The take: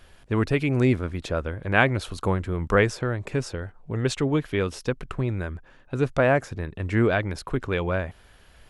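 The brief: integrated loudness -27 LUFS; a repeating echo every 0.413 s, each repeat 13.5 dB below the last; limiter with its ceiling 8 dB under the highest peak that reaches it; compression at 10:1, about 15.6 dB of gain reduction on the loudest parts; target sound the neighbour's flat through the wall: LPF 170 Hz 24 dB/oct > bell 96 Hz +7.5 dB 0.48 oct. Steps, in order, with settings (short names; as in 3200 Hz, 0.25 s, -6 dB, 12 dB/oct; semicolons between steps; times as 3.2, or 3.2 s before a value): compressor 10:1, threshold -31 dBFS; limiter -28 dBFS; LPF 170 Hz 24 dB/oct; bell 96 Hz +7.5 dB 0.48 oct; feedback echo 0.413 s, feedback 21%, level -13.5 dB; gain +12 dB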